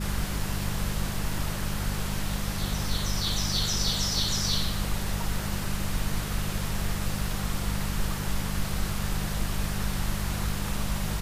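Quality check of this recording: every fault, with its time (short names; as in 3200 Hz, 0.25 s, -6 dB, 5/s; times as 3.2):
hum 50 Hz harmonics 4 -33 dBFS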